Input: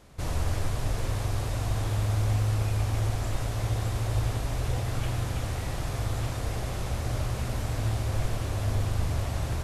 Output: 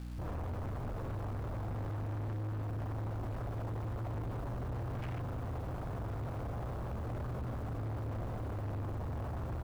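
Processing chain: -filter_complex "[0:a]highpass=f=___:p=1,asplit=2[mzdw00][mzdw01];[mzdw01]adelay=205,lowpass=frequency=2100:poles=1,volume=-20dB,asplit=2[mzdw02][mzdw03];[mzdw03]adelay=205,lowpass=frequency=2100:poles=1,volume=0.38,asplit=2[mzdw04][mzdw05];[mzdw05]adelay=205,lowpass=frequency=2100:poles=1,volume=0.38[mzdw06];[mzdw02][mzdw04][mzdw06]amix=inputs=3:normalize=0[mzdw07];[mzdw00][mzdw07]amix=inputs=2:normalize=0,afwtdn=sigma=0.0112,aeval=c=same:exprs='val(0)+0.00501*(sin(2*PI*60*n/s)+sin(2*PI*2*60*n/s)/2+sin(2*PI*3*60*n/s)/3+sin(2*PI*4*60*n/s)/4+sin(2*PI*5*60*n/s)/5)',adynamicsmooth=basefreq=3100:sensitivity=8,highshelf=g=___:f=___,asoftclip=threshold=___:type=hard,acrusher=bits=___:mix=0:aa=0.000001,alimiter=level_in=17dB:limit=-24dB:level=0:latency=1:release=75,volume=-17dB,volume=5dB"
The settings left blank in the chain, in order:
59, 3.5, 3900, -33.5dB, 9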